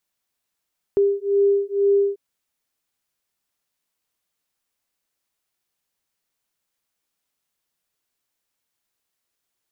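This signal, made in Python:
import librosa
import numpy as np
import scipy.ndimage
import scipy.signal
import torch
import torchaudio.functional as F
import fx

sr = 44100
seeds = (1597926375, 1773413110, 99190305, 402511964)

y = fx.two_tone_beats(sr, length_s=1.19, hz=399.0, beat_hz=2.1, level_db=-19.0)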